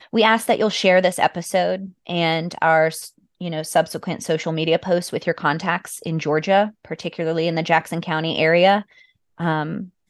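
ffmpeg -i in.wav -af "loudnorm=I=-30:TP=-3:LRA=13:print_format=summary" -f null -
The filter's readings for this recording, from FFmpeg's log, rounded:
Input Integrated:    -20.2 LUFS
Input True Peak:      -1.5 dBTP
Input LRA:             3.0 LU
Input Threshold:     -30.5 LUFS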